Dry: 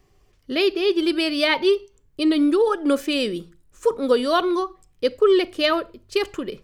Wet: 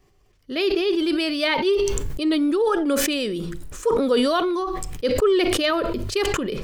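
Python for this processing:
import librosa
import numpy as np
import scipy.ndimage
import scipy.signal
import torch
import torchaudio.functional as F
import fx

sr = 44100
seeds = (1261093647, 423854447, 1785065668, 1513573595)

y = fx.sustainer(x, sr, db_per_s=20.0)
y = F.gain(torch.from_numpy(y), -3.0).numpy()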